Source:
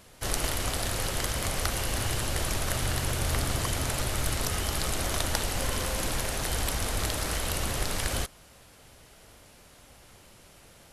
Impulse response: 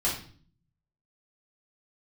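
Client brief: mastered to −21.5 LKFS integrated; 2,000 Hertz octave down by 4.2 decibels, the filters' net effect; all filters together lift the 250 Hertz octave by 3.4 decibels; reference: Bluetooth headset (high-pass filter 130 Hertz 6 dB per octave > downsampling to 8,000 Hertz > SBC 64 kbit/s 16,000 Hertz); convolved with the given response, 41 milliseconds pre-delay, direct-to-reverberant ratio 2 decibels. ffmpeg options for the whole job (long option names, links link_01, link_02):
-filter_complex "[0:a]equalizer=frequency=250:width_type=o:gain=6,equalizer=frequency=2000:width_type=o:gain=-5.5,asplit=2[link_01][link_02];[1:a]atrim=start_sample=2205,adelay=41[link_03];[link_02][link_03]afir=irnorm=-1:irlink=0,volume=-10.5dB[link_04];[link_01][link_04]amix=inputs=2:normalize=0,highpass=frequency=130:poles=1,aresample=8000,aresample=44100,volume=9.5dB" -ar 16000 -c:a sbc -b:a 64k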